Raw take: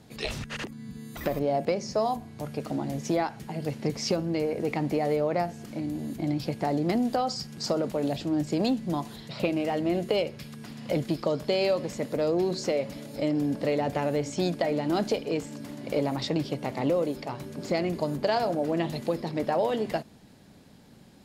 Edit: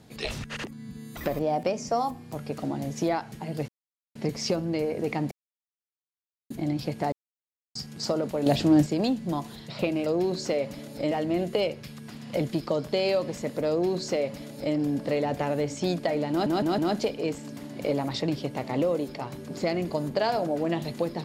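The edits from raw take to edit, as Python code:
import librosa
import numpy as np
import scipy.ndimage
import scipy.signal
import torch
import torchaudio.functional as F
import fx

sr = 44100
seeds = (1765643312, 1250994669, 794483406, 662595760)

y = fx.edit(x, sr, fx.speed_span(start_s=1.39, length_s=1.04, speed=1.08),
    fx.insert_silence(at_s=3.76, length_s=0.47),
    fx.silence(start_s=4.92, length_s=1.19),
    fx.silence(start_s=6.73, length_s=0.63),
    fx.clip_gain(start_s=8.07, length_s=0.4, db=8.0),
    fx.duplicate(start_s=12.25, length_s=1.05, to_s=9.67),
    fx.stutter(start_s=14.86, slice_s=0.16, count=4), tone=tone)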